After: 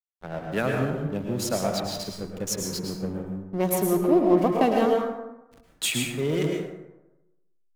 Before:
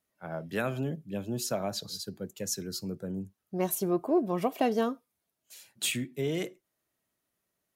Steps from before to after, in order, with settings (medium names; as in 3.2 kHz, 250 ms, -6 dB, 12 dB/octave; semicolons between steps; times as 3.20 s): hysteresis with a dead band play -36 dBFS; plate-style reverb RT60 1 s, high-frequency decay 0.5×, pre-delay 95 ms, DRR 0.5 dB; trim +4.5 dB